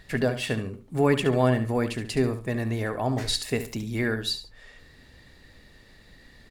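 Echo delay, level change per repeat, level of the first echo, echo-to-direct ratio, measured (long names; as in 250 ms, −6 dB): 71 ms, −11.5 dB, −11.0 dB, −10.5 dB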